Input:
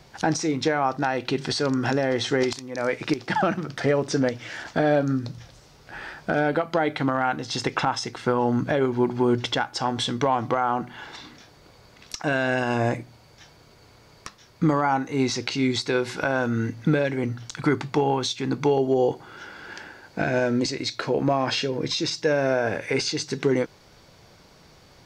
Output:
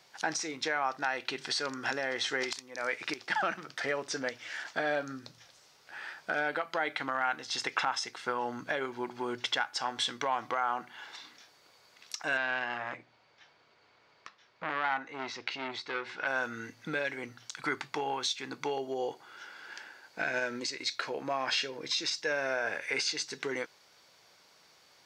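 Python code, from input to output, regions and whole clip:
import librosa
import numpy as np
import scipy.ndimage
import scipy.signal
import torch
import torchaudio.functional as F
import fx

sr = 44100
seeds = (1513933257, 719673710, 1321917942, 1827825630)

y = fx.chain(x, sr, fx.lowpass(hz=3100.0, slope=12),
    fx.transformer_sat(knee_hz=1100.0), at=(12.37, 16.27))
y = fx.chain(y, sr, fx.peak_eq(hz=720.0, db=-8.5, octaves=0.22),
    fx.transient(attack_db=5, sustain_db=-2), at=(20.32, 20.86))
y = fx.highpass(y, sr, hz=1200.0, slope=6)
y = fx.dynamic_eq(y, sr, hz=1800.0, q=1.1, threshold_db=-39.0, ratio=4.0, max_db=4)
y = F.gain(torch.from_numpy(y), -4.5).numpy()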